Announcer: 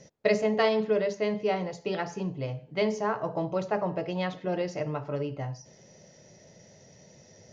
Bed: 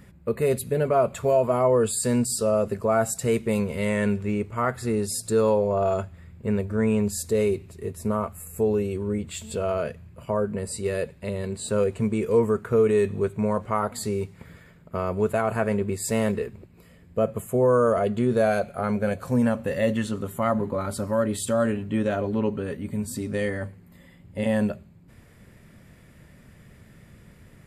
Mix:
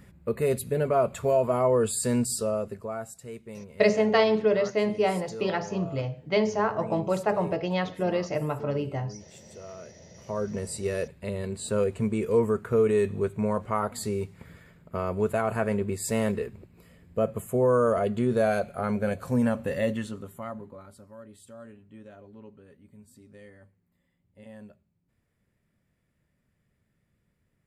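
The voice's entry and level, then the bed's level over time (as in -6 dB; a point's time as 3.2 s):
3.55 s, +3.0 dB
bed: 2.32 s -2.5 dB
3.23 s -17.5 dB
9.88 s -17.5 dB
10.52 s -2.5 dB
19.78 s -2.5 dB
21.09 s -23 dB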